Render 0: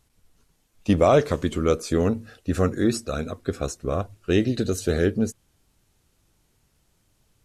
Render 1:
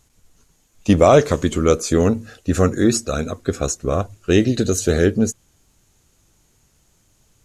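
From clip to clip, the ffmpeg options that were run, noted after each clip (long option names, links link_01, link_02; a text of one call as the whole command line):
ffmpeg -i in.wav -af "equalizer=frequency=6700:width=3.9:gain=9,volume=5.5dB" out.wav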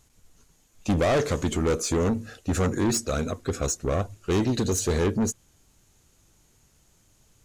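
ffmpeg -i in.wav -af "asoftclip=type=tanh:threshold=-17dB,volume=-2dB" out.wav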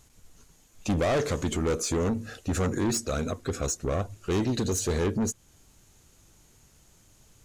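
ffmpeg -i in.wav -af "alimiter=level_in=1dB:limit=-24dB:level=0:latency=1:release=244,volume=-1dB,volume=3dB" out.wav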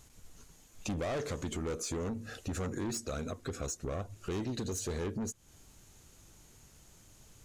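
ffmpeg -i in.wav -af "acompressor=threshold=-39dB:ratio=2.5" out.wav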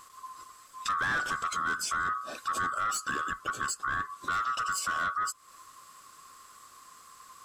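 ffmpeg -i in.wav -af "afftfilt=real='real(if(lt(b,960),b+48*(1-2*mod(floor(b/48),2)),b),0)':imag='imag(if(lt(b,960),b+48*(1-2*mod(floor(b/48),2)),b),0)':win_size=2048:overlap=0.75,volume=5dB" out.wav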